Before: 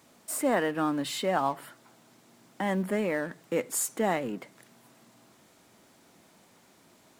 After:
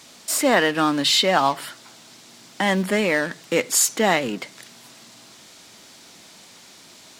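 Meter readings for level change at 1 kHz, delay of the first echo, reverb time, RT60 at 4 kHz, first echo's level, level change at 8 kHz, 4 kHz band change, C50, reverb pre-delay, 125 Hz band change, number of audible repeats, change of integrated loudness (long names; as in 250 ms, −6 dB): +8.5 dB, no echo audible, no reverb audible, no reverb audible, no echo audible, +12.0 dB, +18.0 dB, no reverb audible, no reverb audible, +6.5 dB, no echo audible, +10.0 dB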